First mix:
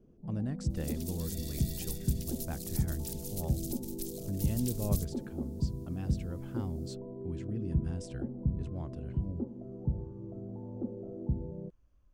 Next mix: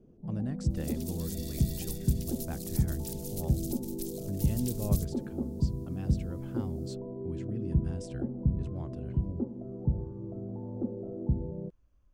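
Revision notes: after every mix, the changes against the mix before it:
first sound +3.5 dB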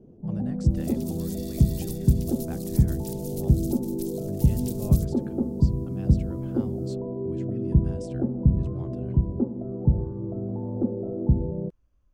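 first sound +8.0 dB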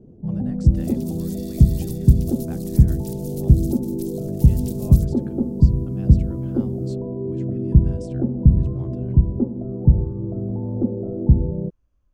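first sound: add tilt EQ -2 dB/octave

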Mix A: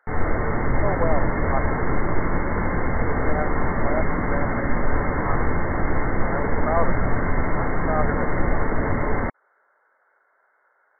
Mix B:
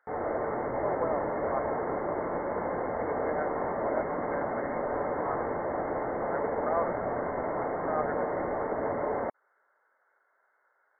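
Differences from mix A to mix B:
speech -7.0 dB; background: add band-pass filter 610 Hz, Q 1.7

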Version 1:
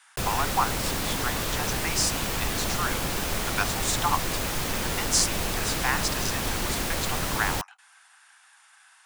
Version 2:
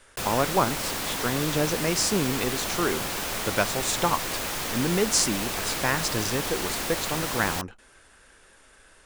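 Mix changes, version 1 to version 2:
speech: remove steep high-pass 730 Hz 96 dB/octave; master: add bass shelf 210 Hz -10.5 dB

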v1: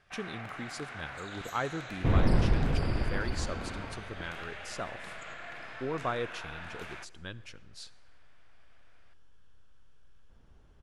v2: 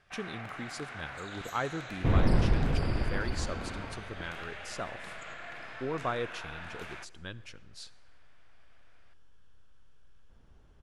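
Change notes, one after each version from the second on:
no change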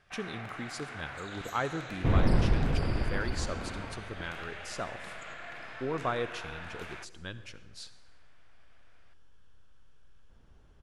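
speech: send +7.0 dB

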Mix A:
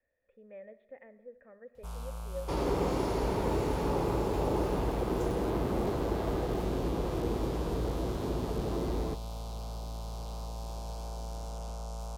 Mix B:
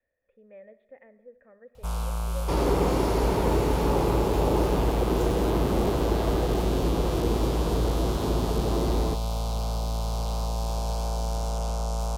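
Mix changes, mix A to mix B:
first sound +11.0 dB; second sound +6.0 dB

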